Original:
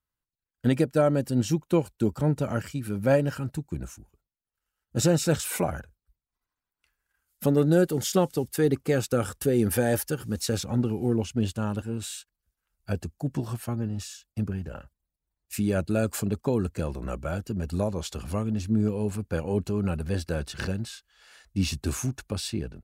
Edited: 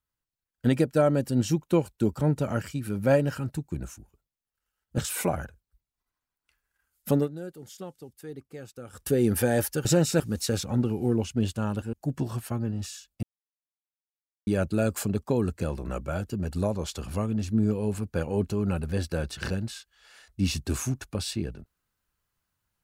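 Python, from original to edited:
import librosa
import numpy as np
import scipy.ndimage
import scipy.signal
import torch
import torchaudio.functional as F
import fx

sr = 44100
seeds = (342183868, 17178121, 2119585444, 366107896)

y = fx.edit(x, sr, fx.move(start_s=4.98, length_s=0.35, to_s=10.2),
    fx.fade_down_up(start_s=7.5, length_s=1.91, db=-17.5, fade_s=0.13, curve='qsin'),
    fx.cut(start_s=11.93, length_s=1.17),
    fx.silence(start_s=14.4, length_s=1.24), tone=tone)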